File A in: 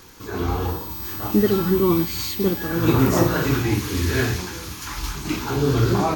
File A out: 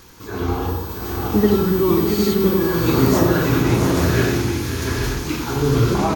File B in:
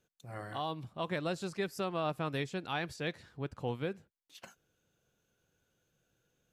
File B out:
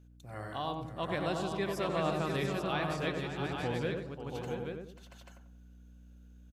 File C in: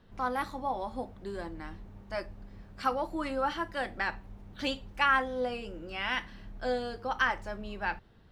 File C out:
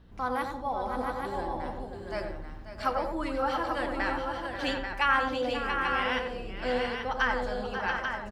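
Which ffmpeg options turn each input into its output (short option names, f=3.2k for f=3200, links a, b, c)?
-filter_complex "[0:a]asplit=2[a][b];[b]adelay=92,lowpass=f=1.1k:p=1,volume=-3dB,asplit=2[c][d];[d]adelay=92,lowpass=f=1.1k:p=1,volume=0.38,asplit=2[e][f];[f]adelay=92,lowpass=f=1.1k:p=1,volume=0.38,asplit=2[g][h];[h]adelay=92,lowpass=f=1.1k:p=1,volume=0.38,asplit=2[i][j];[j]adelay=92,lowpass=f=1.1k:p=1,volume=0.38[k];[c][e][g][i][k]amix=inputs=5:normalize=0[l];[a][l]amix=inputs=2:normalize=0,aeval=exprs='val(0)+0.00158*(sin(2*PI*60*n/s)+sin(2*PI*2*60*n/s)/2+sin(2*PI*3*60*n/s)/3+sin(2*PI*4*60*n/s)/4+sin(2*PI*5*60*n/s)/5)':c=same,asplit=2[m][n];[n]aecho=0:1:538|682|837:0.282|0.473|0.501[o];[m][o]amix=inputs=2:normalize=0"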